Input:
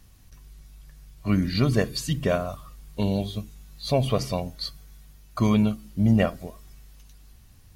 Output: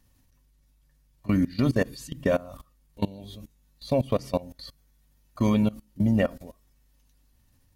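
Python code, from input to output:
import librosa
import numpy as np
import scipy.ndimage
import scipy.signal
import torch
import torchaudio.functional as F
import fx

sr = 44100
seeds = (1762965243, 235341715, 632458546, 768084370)

y = fx.high_shelf(x, sr, hz=11000.0, db=3.5)
y = fx.small_body(y, sr, hz=(270.0, 540.0, 910.0, 1800.0), ring_ms=60, db=9)
y = fx.level_steps(y, sr, step_db=21)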